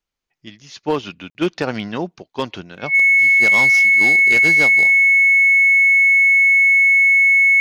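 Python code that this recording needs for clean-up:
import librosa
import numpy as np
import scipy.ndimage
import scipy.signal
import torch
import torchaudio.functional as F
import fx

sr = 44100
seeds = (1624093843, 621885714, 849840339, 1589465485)

y = fx.fix_declip(x, sr, threshold_db=-9.5)
y = fx.notch(y, sr, hz=2200.0, q=30.0)
y = fx.fix_interpolate(y, sr, at_s=(1.3,), length_ms=50.0)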